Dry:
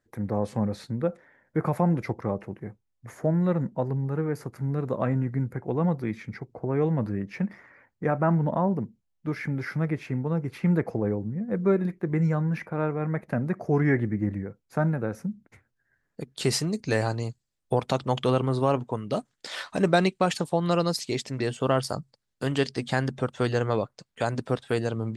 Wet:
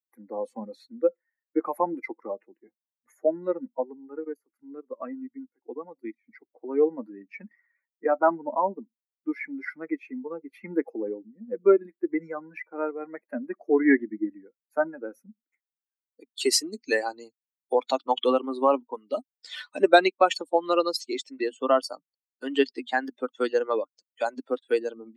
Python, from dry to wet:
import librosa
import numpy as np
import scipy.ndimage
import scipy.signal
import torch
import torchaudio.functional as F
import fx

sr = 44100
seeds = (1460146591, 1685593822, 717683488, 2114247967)

y = fx.level_steps(x, sr, step_db=14, at=(4.19, 6.27))
y = fx.high_shelf(y, sr, hz=5700.0, db=-5.0, at=(20.01, 23.05))
y = fx.bin_expand(y, sr, power=2.0)
y = scipy.signal.sosfilt(scipy.signal.ellip(4, 1.0, 50, 270.0, 'highpass', fs=sr, output='sos'), y)
y = y * 10.0 ** (8.5 / 20.0)